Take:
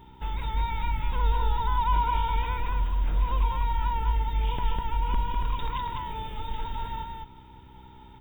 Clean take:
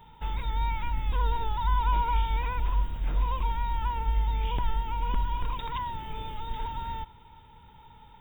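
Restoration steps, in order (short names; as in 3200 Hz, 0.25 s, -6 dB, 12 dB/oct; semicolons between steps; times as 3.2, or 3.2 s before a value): de-hum 63.9 Hz, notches 6; expander -40 dBFS, range -21 dB; inverse comb 0.201 s -3.5 dB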